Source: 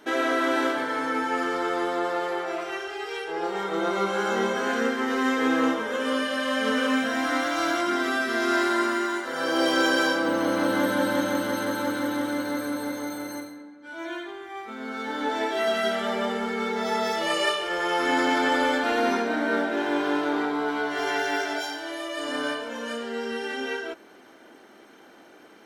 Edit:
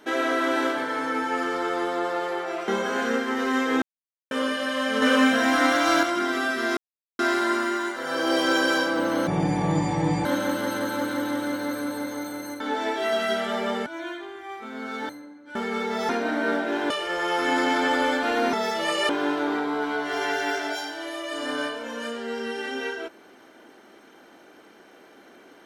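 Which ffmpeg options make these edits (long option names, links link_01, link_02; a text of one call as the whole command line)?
ffmpeg -i in.wav -filter_complex "[0:a]asplit=17[link_01][link_02][link_03][link_04][link_05][link_06][link_07][link_08][link_09][link_10][link_11][link_12][link_13][link_14][link_15][link_16][link_17];[link_01]atrim=end=2.682[link_18];[link_02]atrim=start=4.388:end=5.53,asetpts=PTS-STARTPTS,afade=type=out:start_time=1.138:duration=0.004:curve=hsin[link_19];[link_03]atrim=start=5.53:end=6.02,asetpts=PTS-STARTPTS,volume=0[link_20];[link_04]atrim=start=6.02:end=6.732,asetpts=PTS-STARTPTS,afade=type=in:duration=0.004:curve=hsin[link_21];[link_05]atrim=start=6.728:end=7.742,asetpts=PTS-STARTPTS,volume=5dB[link_22];[link_06]atrim=start=7.738:end=8.48,asetpts=PTS-STARTPTS,afade=type=out:start_time=0.738:duration=0.004:curve=hsin,apad=pad_dur=0.42[link_23];[link_07]atrim=start=8.48:end=10.564,asetpts=PTS-STARTPTS,afade=type=in:duration=0.004:curve=hsin[link_24];[link_08]atrim=start=10.56:end=11.11,asetpts=PTS-STARTPTS,asetrate=24696,aresample=44100,atrim=end_sample=43312,asetpts=PTS-STARTPTS[link_25];[link_09]atrim=start=11.106:end=13.462[link_26];[link_10]atrim=start=15.148:end=16.412[link_27];[link_11]atrim=start=13.918:end=15.152[link_28];[link_12]atrim=start=13.458:end=13.922[link_29];[link_13]atrim=start=16.408:end=16.952[link_30];[link_14]atrim=start=19.138:end=19.952[link_31];[link_15]atrim=start=17.508:end=19.142[link_32];[link_16]atrim=start=16.948:end=17.512[link_33];[link_17]atrim=start=19.948[link_34];[link_19][link_20][link_21]concat=n=3:v=0:a=1[link_35];[link_18][link_35]acrossfade=duration=0.004:curve1=hsin:curve2=hsin[link_36];[link_36][link_22]acrossfade=duration=0.004:curve1=hsin:curve2=hsin[link_37];[link_23][link_24]concat=n=2:v=0:a=1[link_38];[link_37][link_38]acrossfade=duration=0.004:curve1=hsin:curve2=hsin[link_39];[link_39][link_25]acrossfade=duration=0.004:curve1=hsin:curve2=hsin[link_40];[link_40][link_26]acrossfade=duration=0.004:curve1=hsin:curve2=hsin[link_41];[link_41][link_27]acrossfade=duration=0.004:curve1=hsin:curve2=hsin[link_42];[link_42][link_28]acrossfade=duration=0.004:curve1=hsin:curve2=hsin[link_43];[link_43][link_29]acrossfade=duration=0.004:curve1=hsin:curve2=hsin[link_44];[link_44][link_30]acrossfade=duration=0.004:curve1=hsin:curve2=hsin[link_45];[link_45][link_31]acrossfade=duration=0.004:curve1=hsin:curve2=hsin[link_46];[link_46][link_32]acrossfade=duration=0.004:curve1=hsin:curve2=hsin[link_47];[link_47][link_33]acrossfade=duration=0.004:curve1=hsin:curve2=hsin[link_48];[link_48][link_34]acrossfade=duration=0.004:curve1=hsin:curve2=hsin" out.wav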